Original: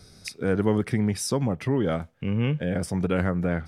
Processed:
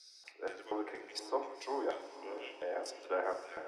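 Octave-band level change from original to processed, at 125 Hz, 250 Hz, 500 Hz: under -40 dB, -22.0 dB, -10.0 dB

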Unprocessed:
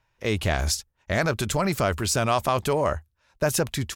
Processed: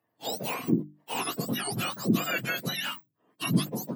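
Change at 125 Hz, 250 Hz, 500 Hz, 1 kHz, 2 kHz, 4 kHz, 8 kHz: -6.5, +0.5, -11.5, -8.5, -4.0, -2.0, -8.0 dB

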